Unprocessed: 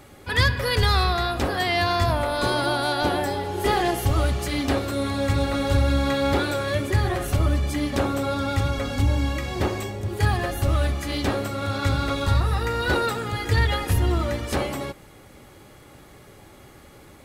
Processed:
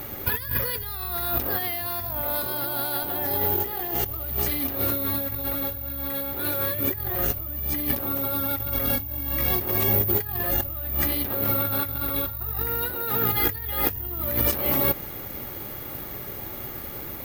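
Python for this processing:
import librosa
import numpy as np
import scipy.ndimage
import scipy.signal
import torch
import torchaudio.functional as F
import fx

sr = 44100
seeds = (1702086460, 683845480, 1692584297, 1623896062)

y = fx.over_compress(x, sr, threshold_db=-32.0, ratio=-1.0)
y = fx.air_absorb(y, sr, metres=68.0, at=(10.73, 13.25))
y = (np.kron(scipy.signal.resample_poly(y, 1, 3), np.eye(3)[0]) * 3)[:len(y)]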